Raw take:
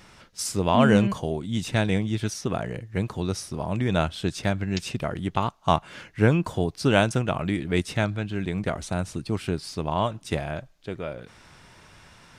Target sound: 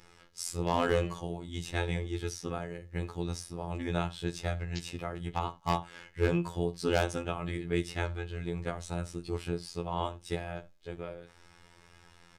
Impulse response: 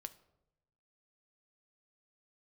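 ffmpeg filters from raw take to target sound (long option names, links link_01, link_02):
-filter_complex "[1:a]atrim=start_sample=2205,atrim=end_sample=4410[link_01];[0:a][link_01]afir=irnorm=-1:irlink=0,aeval=exprs='0.178*(abs(mod(val(0)/0.178+3,4)-2)-1)':channel_layout=same,afftfilt=real='hypot(re,im)*cos(PI*b)':imag='0':win_size=2048:overlap=0.75,aecho=1:1:2.4:0.34"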